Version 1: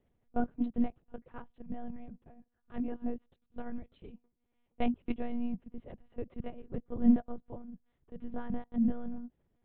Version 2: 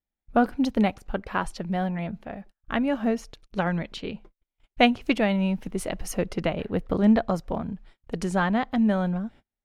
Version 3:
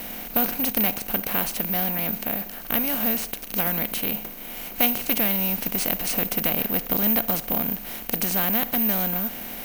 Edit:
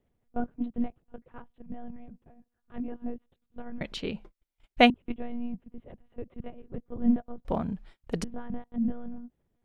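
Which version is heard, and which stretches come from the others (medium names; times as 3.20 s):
1
3.81–4.90 s: from 2
7.45–8.24 s: from 2
not used: 3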